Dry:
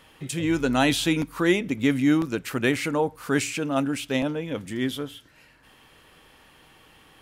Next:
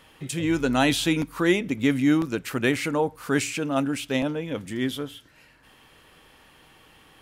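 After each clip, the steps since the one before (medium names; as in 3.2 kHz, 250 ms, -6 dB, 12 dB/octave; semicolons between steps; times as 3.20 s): no audible change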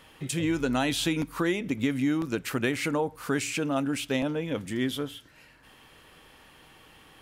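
compression 5:1, threshold -23 dBFS, peak gain reduction 8 dB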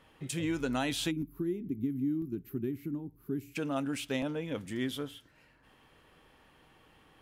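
time-frequency box 1.11–3.56 s, 420–11000 Hz -22 dB; tape noise reduction on one side only decoder only; trim -5.5 dB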